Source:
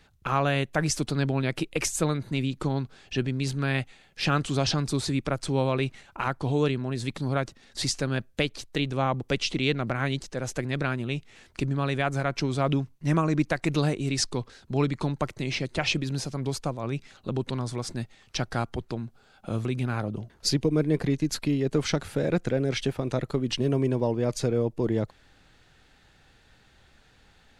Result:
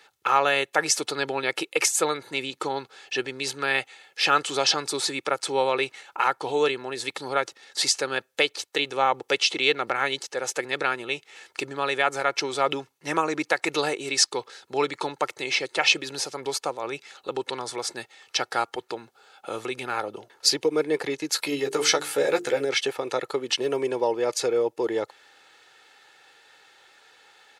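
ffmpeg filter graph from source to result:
-filter_complex "[0:a]asettb=1/sr,asplit=3[a][b][c];[a]atrim=end=21.374[d];[b]atrim=start=21.37:end=22.65,asetpts=PTS-STARTPTS,afade=t=in:d=0.004:c=qsin,afade=t=out:st=1.276:d=0.004:c=qsin,highshelf=f=7.4k:g=10,bandreject=f=50:t=h:w=6,bandreject=f=100:t=h:w=6,bandreject=f=150:t=h:w=6,bandreject=f=200:t=h:w=6,bandreject=f=250:t=h:w=6,bandreject=f=300:t=h:w=6,bandreject=f=350:t=h:w=6,bandreject=f=400:t=h:w=6,bandreject=f=450:t=h:w=6,asplit=2[e][f];[f]adelay=14,volume=-5dB[g];[e][g]amix=inputs=2:normalize=0,atrim=end_sample=56448[h];[c]atrim=start=22.646[i];[d][h]acrossfade=d=0.004:c1=hsin:c2=qsin[j];[j][i]acrossfade=d=0.004:c1=qsin:c2=hsin,highpass=540,deesser=0.35,aecho=1:1:2.3:0.46,volume=6dB"

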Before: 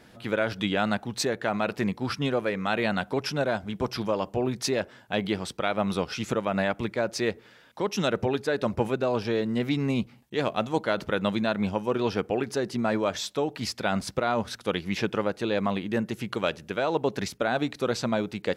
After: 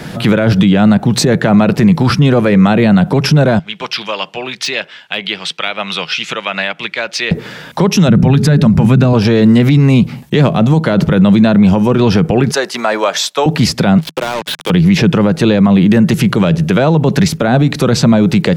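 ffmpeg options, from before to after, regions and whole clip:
-filter_complex "[0:a]asettb=1/sr,asplit=3[a][b][c];[a]atrim=end=3.594[d];[b]atrim=start=3.59:end=7.31,asetpts=PTS-STARTPTS,afade=t=in:d=0.004:c=qsin,afade=t=out:st=3.716:d=0.004:c=qsin,bandpass=f=2.9k:t=q:w=1.9,deesser=0.95[e];[c]atrim=start=7.306[f];[d][e]acrossfade=d=0.004:c1=hsin:c2=qsin[g];[g][f]acrossfade=d=0.004:c1=qsin:c2=hsin,asettb=1/sr,asplit=3[h][i][j];[h]atrim=end=8.084[k];[i]atrim=start=8.08:end=9.13,asetpts=PTS-STARTPTS,afade=t=in:d=0.004:c=qsin,afade=t=out:st=1.046:d=0.004:c=qsin,lowshelf=f=280:t=q:w=1.5:g=11,bandreject=f=60:t=h:w=6,bandreject=f=120:t=h:w=6,bandreject=f=180:t=h:w=6,bandreject=f=240:t=h:w=6,bandreject=f=300:t=h:w=6,bandreject=f=360:t=h:w=6,bandreject=f=420:t=h:w=6[l];[j]atrim=start=9.126[m];[k][l]acrossfade=d=0.004:c1=hsin:c2=qsin[n];[n][m]acrossfade=d=0.004:c1=qsin:c2=hsin,asettb=1/sr,asplit=3[o][p][q];[o]atrim=end=12.514[r];[p]atrim=start=12.51:end=13.46,asetpts=PTS-STARTPTS,afade=t=in:d=0.004:c=qsin,afade=t=out:st=0.946:d=0.004:c=qsin,agate=range=-7dB:threshold=-39dB:ratio=16:release=100:detection=peak,highpass=880[s];[q]atrim=start=13.456[t];[r][s]acrossfade=d=0.004:c1=hsin:c2=qsin[u];[u][t]acrossfade=d=0.004:c1=qsin:c2=hsin,asettb=1/sr,asplit=3[v][w][x];[v]atrim=end=13.984[y];[w]atrim=start=13.98:end=14.7,asetpts=PTS-STARTPTS,afade=t=in:d=0.004:c=qsin,afade=t=out:st=0.716:d=0.004:c=qsin,highpass=f=330:w=0.5412,highpass=f=330:w=1.3066,equalizer=f=330:t=q:w=4:g=-4,equalizer=f=480:t=q:w=4:g=-6,equalizer=f=700:t=q:w=4:g=-6,equalizer=f=1.3k:t=q:w=4:g=-9,equalizer=f=1.9k:t=q:w=4:g=-5,equalizer=f=3.2k:t=q:w=4:g=7,lowpass=f=3.4k:w=0.5412,lowpass=f=3.4k:w=1.3066,acompressor=threshold=-39dB:ratio=5:attack=3.2:release=140:knee=1:detection=peak,acrusher=bits=6:mix=0:aa=0.5[z];[x]atrim=start=14.696[aa];[y][z]acrossfade=d=0.004:c1=hsin:c2=qsin[ab];[ab][aa]acrossfade=d=0.004:c1=qsin:c2=hsin,equalizer=f=160:w=3.4:g=14,acrossover=split=260|660[ac][ad][ae];[ac]acompressor=threshold=-25dB:ratio=4[af];[ad]acompressor=threshold=-35dB:ratio=4[ag];[ae]acompressor=threshold=-39dB:ratio=4[ah];[af][ag][ah]amix=inputs=3:normalize=0,alimiter=level_in=25.5dB:limit=-1dB:release=50:level=0:latency=1,volume=-1dB"

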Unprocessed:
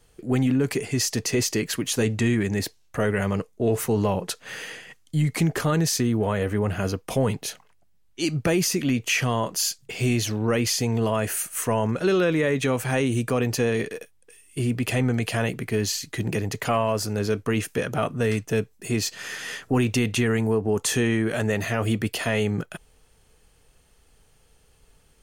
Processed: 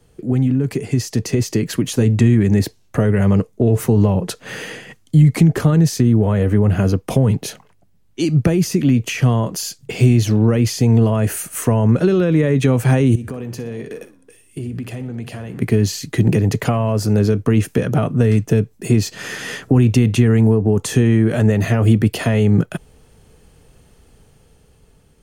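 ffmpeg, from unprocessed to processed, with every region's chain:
-filter_complex "[0:a]asettb=1/sr,asplit=3[a][b][c];[a]atrim=end=13.154[d];[b]atrim=start=13.15:end=15.62,asetpts=PTS-STARTPTS,afade=t=in:d=0.004:c=qsin,afade=t=out:st=2.466:d=0.004:c=qsin,flanger=delay=3.4:depth=9.9:regen=-89:speed=1.4:shape=sinusoidal,acompressor=threshold=-37dB:ratio=12:attack=3.2:release=140:knee=1:detection=peak,aecho=1:1:60|120|180:0.178|0.0658|0.0243,atrim=end_sample=108927[e];[c]atrim=start=15.616[f];[d][e]acrossfade=d=0.004:c1=hsin:c2=qsin[g];[g][f]acrossfade=d=0.004:c1=qsin:c2=hsin,acrossover=split=140[h][i];[i]acompressor=threshold=-27dB:ratio=6[j];[h][j]amix=inputs=2:normalize=0,equalizer=f=170:w=0.31:g=10.5,dynaudnorm=f=310:g=9:m=7dB"

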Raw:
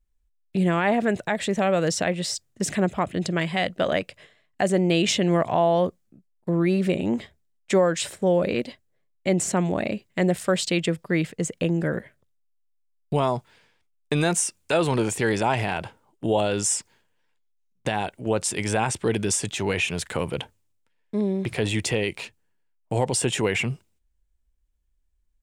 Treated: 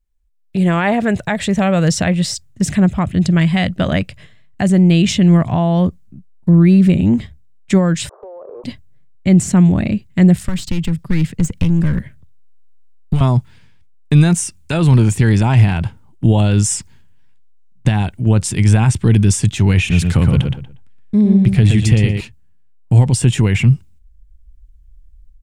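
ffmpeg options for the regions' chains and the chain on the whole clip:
-filter_complex "[0:a]asettb=1/sr,asplit=3[a][b][c];[a]atrim=end=8.094[d];[b]atrim=start=8.09:end=8.64,asetpts=PTS-STARTPTS,afade=t=in:d=0.004:c=qsin,afade=t=out:st=0.546:d=0.004:c=qsin,aeval=exprs='val(0)+0.5*0.0224*sgn(val(0))':c=same,asuperpass=centerf=700:order=12:qfactor=0.87,acompressor=threshold=-31dB:ratio=10:attack=3.2:release=140:knee=1:detection=peak[e];[c]atrim=start=8.636[f];[d][e]acrossfade=d=0.004:c1=hsin:c2=qsin[g];[g][f]acrossfade=d=0.004:c1=qsin:c2=hsin,asettb=1/sr,asplit=3[h][i][j];[h]atrim=end=10.434[k];[i]atrim=start=10.43:end=13.21,asetpts=PTS-STARTPTS,afade=t=in:d=0.004:c=qsin,afade=t=out:st=2.776:d=0.004:c=qsin,acrossover=split=240|1600[l][m][n];[l]acompressor=threshold=-32dB:ratio=4[o];[m]acompressor=threshold=-32dB:ratio=4[p];[n]acompressor=threshold=-31dB:ratio=4[q];[o][p][q]amix=inputs=3:normalize=0,aeval=exprs='clip(val(0),-1,0.0282)':c=same[r];[j]atrim=start=13.206[s];[k][r]acrossfade=d=0.004:c1=hsin:c2=qsin[t];[t][s]acrossfade=d=0.004:c1=qsin:c2=hsin,asettb=1/sr,asplit=3[u][v][w];[u]atrim=end=19.784[x];[v]atrim=start=19.78:end=22.21,asetpts=PTS-STARTPTS,afade=t=in:d=0.004:c=qsin,afade=t=out:st=2.426:d=0.004:c=qsin,bandreject=f=980:w=12,asplit=2[y][z];[z]adelay=119,lowpass=f=3.4k:p=1,volume=-4dB,asplit=2[aa][ab];[ab]adelay=119,lowpass=f=3.4k:p=1,volume=0.25,asplit=2[ac][ad];[ad]adelay=119,lowpass=f=3.4k:p=1,volume=0.25[ae];[y][aa][ac][ae]amix=inputs=4:normalize=0,atrim=end_sample=107163[af];[w]atrim=start=22.206[ag];[x][af]acrossfade=d=0.004:c1=hsin:c2=qsin[ah];[ah][ag]acrossfade=d=0.004:c1=qsin:c2=hsin,asubboost=boost=11:cutoff=150,dynaudnorm=f=320:g=3:m=7.5dB"

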